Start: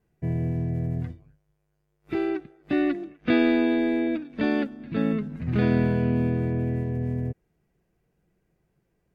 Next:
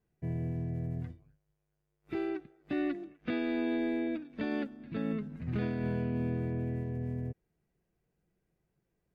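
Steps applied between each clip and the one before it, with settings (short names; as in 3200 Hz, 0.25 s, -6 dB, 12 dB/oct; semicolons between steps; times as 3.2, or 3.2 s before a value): limiter -16 dBFS, peak gain reduction 6.5 dB; gain -8 dB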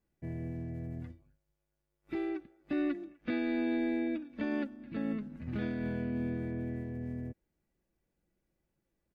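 comb 3.5 ms, depth 44%; gain -2 dB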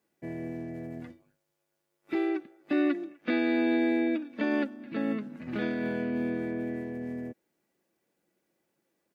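HPF 270 Hz 12 dB/oct; gain +8 dB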